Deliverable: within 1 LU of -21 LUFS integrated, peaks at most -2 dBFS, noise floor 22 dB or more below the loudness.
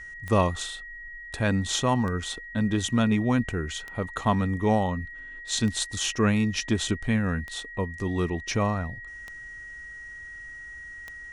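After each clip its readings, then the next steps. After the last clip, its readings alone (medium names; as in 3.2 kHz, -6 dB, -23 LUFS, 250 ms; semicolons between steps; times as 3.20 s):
clicks found 7; steady tone 1.9 kHz; tone level -39 dBFS; loudness -26.5 LUFS; peak level -9.0 dBFS; loudness target -21.0 LUFS
-> de-click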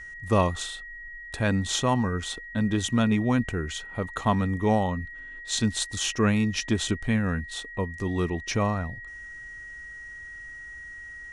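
clicks found 0; steady tone 1.9 kHz; tone level -39 dBFS
-> band-stop 1.9 kHz, Q 30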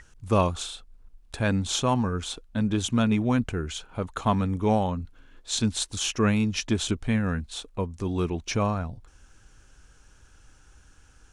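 steady tone not found; loudness -27.0 LUFS; peak level -9.0 dBFS; loudness target -21.0 LUFS
-> trim +6 dB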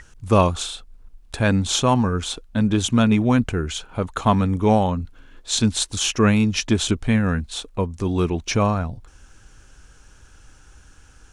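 loudness -21.0 LUFS; peak level -3.0 dBFS; noise floor -50 dBFS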